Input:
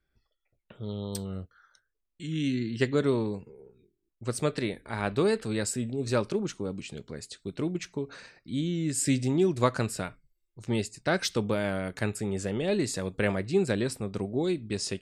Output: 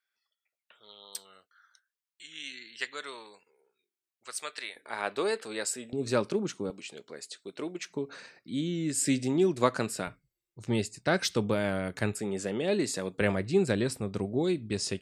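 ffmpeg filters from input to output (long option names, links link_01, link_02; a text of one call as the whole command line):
ffmpeg -i in.wav -af "asetnsamples=nb_out_samples=441:pad=0,asendcmd='4.76 highpass f 480;5.93 highpass f 150;6.7 highpass f 410;7.9 highpass f 180;10.07 highpass f 71;12.14 highpass f 190;13.21 highpass f 53',highpass=1300" out.wav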